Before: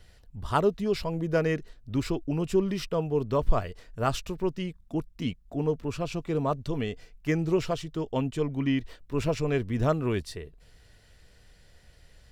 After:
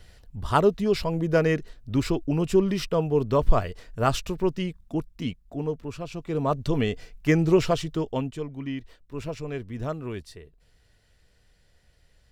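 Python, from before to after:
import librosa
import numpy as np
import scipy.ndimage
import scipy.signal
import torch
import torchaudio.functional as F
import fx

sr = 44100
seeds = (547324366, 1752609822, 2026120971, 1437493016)

y = fx.gain(x, sr, db=fx.line((4.62, 4.0), (6.09, -4.0), (6.67, 6.0), (7.9, 6.0), (8.49, -6.0)))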